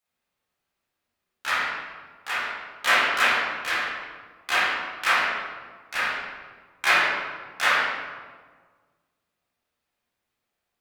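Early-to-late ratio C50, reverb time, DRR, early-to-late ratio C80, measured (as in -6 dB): -1.0 dB, 1.5 s, -11.5 dB, 1.5 dB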